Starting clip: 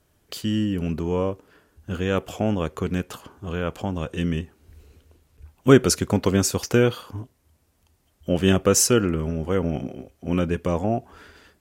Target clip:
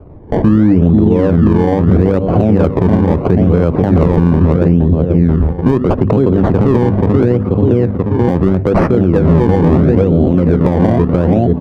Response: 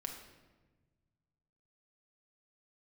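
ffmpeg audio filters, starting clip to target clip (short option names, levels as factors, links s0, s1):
-filter_complex "[0:a]bandreject=f=50:t=h:w=6,bandreject=f=100:t=h:w=6,bandreject=f=150:t=h:w=6,bandreject=f=200:t=h:w=6,bandreject=f=250:t=h:w=6,asplit=2[s0][s1];[s1]adelay=483,lowpass=f=1300:p=1,volume=0.668,asplit=2[s2][s3];[s3]adelay=483,lowpass=f=1300:p=1,volume=0.43,asplit=2[s4][s5];[s5]adelay=483,lowpass=f=1300:p=1,volume=0.43,asplit=2[s6][s7];[s7]adelay=483,lowpass=f=1300:p=1,volume=0.43,asplit=2[s8][s9];[s9]adelay=483,lowpass=f=1300:p=1,volume=0.43[s10];[s0][s2][s4][s6][s8][s10]amix=inputs=6:normalize=0,acrossover=split=150|7500[s11][s12][s13];[s13]acrusher=bits=4:mix=0:aa=0.000001[s14];[s11][s12][s14]amix=inputs=3:normalize=0,acompressor=threshold=0.0355:ratio=8,acrusher=samples=23:mix=1:aa=0.000001:lfo=1:lforange=23:lforate=0.76,highshelf=f=11000:g=11,adynamicsmooth=sensitivity=2.5:basefreq=1600,tiltshelf=f=1400:g=9.5,alimiter=level_in=13.3:limit=0.891:release=50:level=0:latency=1,volume=0.891"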